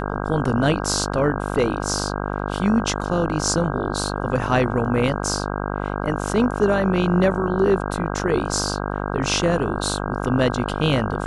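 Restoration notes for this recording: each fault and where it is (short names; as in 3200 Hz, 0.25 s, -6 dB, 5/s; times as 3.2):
buzz 50 Hz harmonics 32 -26 dBFS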